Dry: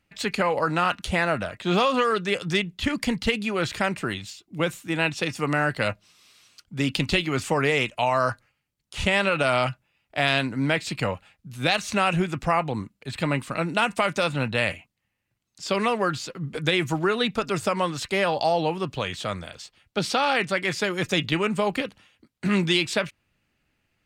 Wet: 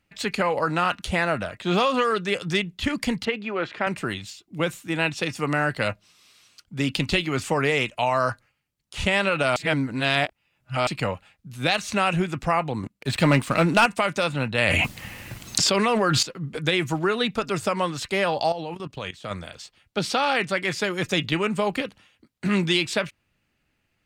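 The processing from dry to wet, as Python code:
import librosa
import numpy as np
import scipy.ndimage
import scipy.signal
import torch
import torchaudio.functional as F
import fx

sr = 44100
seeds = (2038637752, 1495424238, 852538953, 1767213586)

y = fx.bandpass_edges(x, sr, low_hz=260.0, high_hz=2400.0, at=(3.25, 3.87))
y = fx.leveller(y, sr, passes=2, at=(12.83, 13.86))
y = fx.env_flatten(y, sr, amount_pct=100, at=(14.58, 16.23))
y = fx.level_steps(y, sr, step_db=16, at=(18.52, 19.31))
y = fx.edit(y, sr, fx.reverse_span(start_s=9.56, length_s=1.31), tone=tone)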